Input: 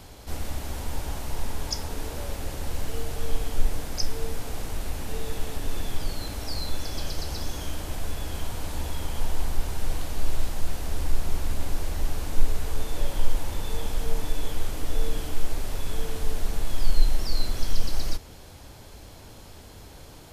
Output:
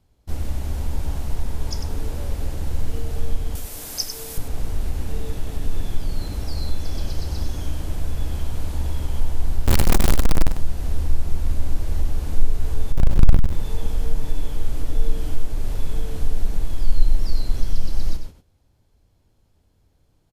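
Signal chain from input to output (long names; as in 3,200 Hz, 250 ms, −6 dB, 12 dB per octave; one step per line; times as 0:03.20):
0:12.92–0:13.53: each half-wave held at its own peak
noise gate −36 dBFS, range −22 dB
low-shelf EQ 330 Hz +10.5 dB
in parallel at −0.5 dB: downward compressor, threshold −12 dBFS, peak gain reduction 14 dB
0:03.55–0:04.38: on the sum: RIAA equalisation recording
0:09.66–0:10.48: log-companded quantiser 2 bits
on a send: single-tap delay 98 ms −8.5 dB
on the sum: level −9 dB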